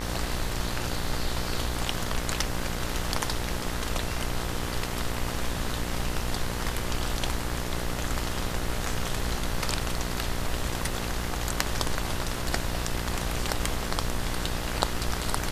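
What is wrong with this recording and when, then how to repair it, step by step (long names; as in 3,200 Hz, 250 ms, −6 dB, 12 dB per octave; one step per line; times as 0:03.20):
mains buzz 60 Hz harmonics 35 −34 dBFS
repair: hum removal 60 Hz, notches 35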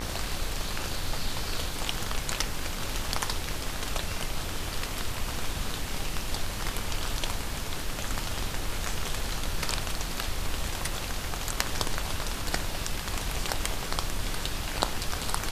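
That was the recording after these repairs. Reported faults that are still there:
none of them is left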